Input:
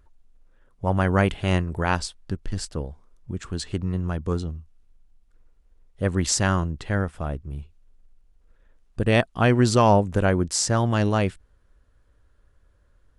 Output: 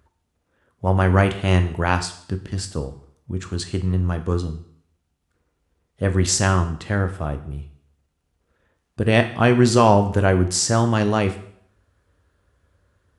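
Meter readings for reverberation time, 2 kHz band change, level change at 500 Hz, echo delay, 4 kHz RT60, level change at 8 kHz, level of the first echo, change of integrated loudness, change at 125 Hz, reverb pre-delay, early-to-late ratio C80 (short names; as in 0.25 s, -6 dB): 0.65 s, +3.0 dB, +3.5 dB, none, 0.60 s, +3.0 dB, none, +3.5 dB, +3.5 dB, 6 ms, 15.5 dB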